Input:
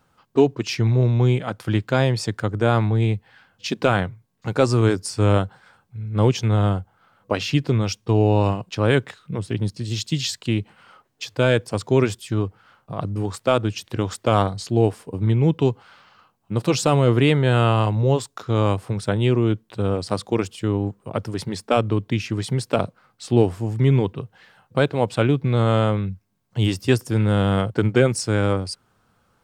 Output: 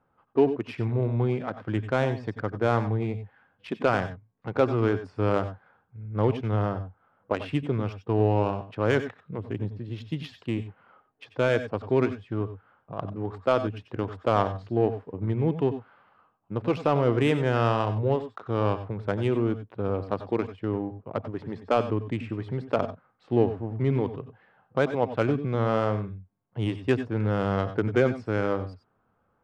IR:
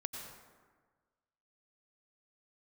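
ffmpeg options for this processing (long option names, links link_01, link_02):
-filter_complex "[0:a]bass=frequency=250:gain=-6,treble=frequency=4000:gain=-11,adynamicsmooth=sensitivity=1:basefreq=1700[link_01];[1:a]atrim=start_sample=2205,atrim=end_sample=4410[link_02];[link_01][link_02]afir=irnorm=-1:irlink=0,volume=-1dB"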